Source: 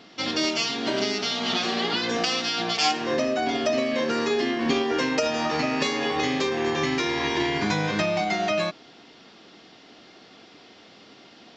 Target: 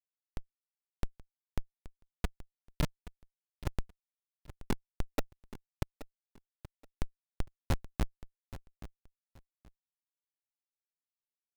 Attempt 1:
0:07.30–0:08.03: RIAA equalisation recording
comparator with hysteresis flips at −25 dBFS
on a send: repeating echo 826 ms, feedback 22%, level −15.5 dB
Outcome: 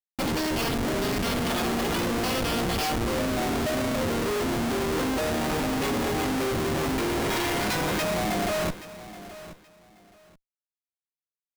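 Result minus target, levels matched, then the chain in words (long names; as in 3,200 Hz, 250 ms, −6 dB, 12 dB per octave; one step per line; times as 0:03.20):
comparator with hysteresis: distortion −35 dB
0:07.30–0:08.03: RIAA equalisation recording
comparator with hysteresis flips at −13.5 dBFS
on a send: repeating echo 826 ms, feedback 22%, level −15.5 dB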